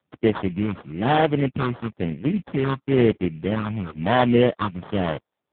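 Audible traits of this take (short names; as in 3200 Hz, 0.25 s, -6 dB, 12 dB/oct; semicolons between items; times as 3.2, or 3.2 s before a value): phasing stages 8, 1 Hz, lowest notch 490–2700 Hz; aliases and images of a low sample rate 2500 Hz, jitter 20%; AMR-NB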